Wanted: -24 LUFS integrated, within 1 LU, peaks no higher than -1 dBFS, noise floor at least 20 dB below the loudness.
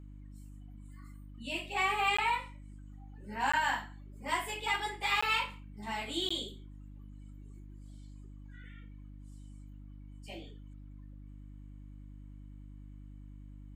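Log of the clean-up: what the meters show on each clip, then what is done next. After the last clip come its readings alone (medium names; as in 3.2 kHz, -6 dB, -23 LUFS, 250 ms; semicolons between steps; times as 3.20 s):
dropouts 4; longest dropout 15 ms; hum 50 Hz; highest harmonic 300 Hz; hum level -46 dBFS; loudness -32.5 LUFS; peak level -18.0 dBFS; loudness target -24.0 LUFS
-> interpolate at 2.17/3.52/5.21/6.29 s, 15 ms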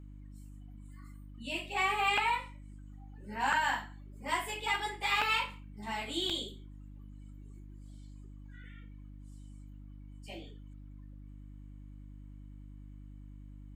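dropouts 0; hum 50 Hz; highest harmonic 300 Hz; hum level -46 dBFS
-> de-hum 50 Hz, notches 6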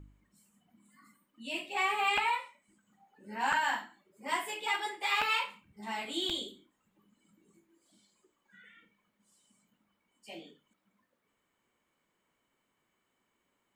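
hum not found; loudness -32.5 LUFS; peak level -17.0 dBFS; loudness target -24.0 LUFS
-> trim +8.5 dB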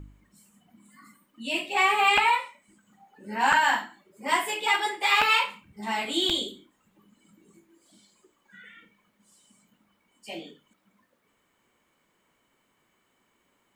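loudness -24.0 LUFS; peak level -8.5 dBFS; noise floor -71 dBFS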